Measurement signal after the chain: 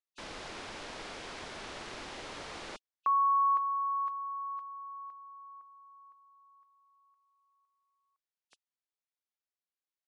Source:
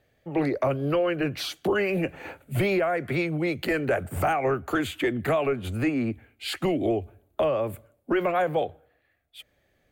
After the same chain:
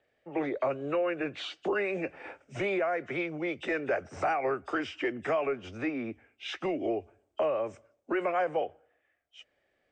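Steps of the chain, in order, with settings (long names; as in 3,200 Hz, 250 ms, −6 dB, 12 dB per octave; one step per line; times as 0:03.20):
hearing-aid frequency compression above 2,500 Hz 1.5 to 1
three-way crossover with the lows and the highs turned down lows −13 dB, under 280 Hz, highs −19 dB, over 5,700 Hz
level −4 dB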